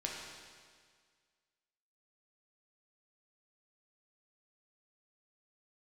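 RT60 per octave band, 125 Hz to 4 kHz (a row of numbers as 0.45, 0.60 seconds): 1.8, 1.8, 1.8, 1.8, 1.8, 1.8 seconds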